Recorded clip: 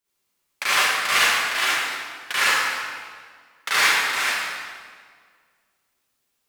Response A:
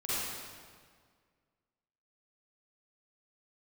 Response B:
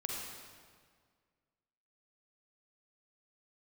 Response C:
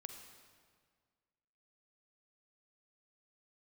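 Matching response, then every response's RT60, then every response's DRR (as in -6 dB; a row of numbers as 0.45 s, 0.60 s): A; 1.8 s, 1.8 s, 1.8 s; -12.0 dB, -2.0 dB, 5.0 dB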